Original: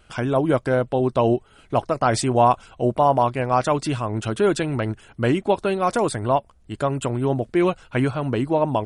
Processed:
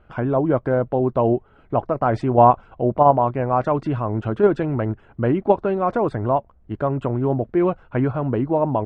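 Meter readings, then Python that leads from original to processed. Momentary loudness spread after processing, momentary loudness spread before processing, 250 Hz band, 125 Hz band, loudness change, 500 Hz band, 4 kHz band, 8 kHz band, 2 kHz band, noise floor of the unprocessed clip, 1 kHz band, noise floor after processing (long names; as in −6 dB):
9 LU, 7 LU, +1.0 dB, +1.5 dB, +1.5 dB, +1.5 dB, below −10 dB, below −25 dB, −4.5 dB, −54 dBFS, +1.5 dB, −53 dBFS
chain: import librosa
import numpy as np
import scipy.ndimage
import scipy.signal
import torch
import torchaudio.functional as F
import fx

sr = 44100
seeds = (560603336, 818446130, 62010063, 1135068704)

p1 = scipy.signal.sosfilt(scipy.signal.butter(2, 1300.0, 'lowpass', fs=sr, output='sos'), x)
p2 = fx.level_steps(p1, sr, step_db=16)
p3 = p1 + (p2 * 10.0 ** (0.0 / 20.0))
y = p3 * 10.0 ** (-1.0 / 20.0)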